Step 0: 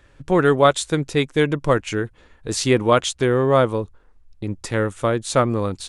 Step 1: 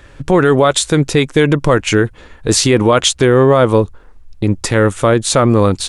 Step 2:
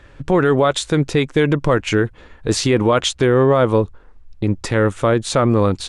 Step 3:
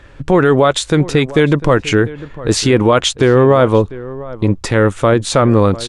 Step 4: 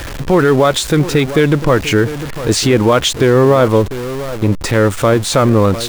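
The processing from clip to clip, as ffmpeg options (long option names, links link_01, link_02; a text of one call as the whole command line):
ffmpeg -i in.wav -af "alimiter=level_in=13.5dB:limit=-1dB:release=50:level=0:latency=1,volume=-1dB" out.wav
ffmpeg -i in.wav -af "highshelf=frequency=7400:gain=-12,volume=-4dB" out.wav
ffmpeg -i in.wav -filter_complex "[0:a]asplit=2[link_01][link_02];[link_02]adelay=699.7,volume=-17dB,highshelf=frequency=4000:gain=-15.7[link_03];[link_01][link_03]amix=inputs=2:normalize=0,volume=4dB" out.wav
ffmpeg -i in.wav -af "aeval=exprs='val(0)+0.5*0.106*sgn(val(0))':channel_layout=same,volume=-1dB" out.wav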